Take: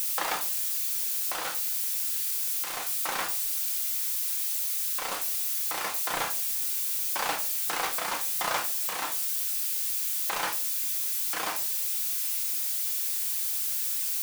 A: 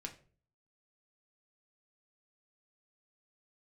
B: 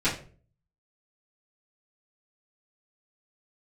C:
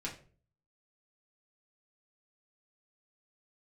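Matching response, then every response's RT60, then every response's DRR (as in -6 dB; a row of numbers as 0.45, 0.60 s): A; 0.45, 0.45, 0.45 s; 2.0, -14.0, -4.5 dB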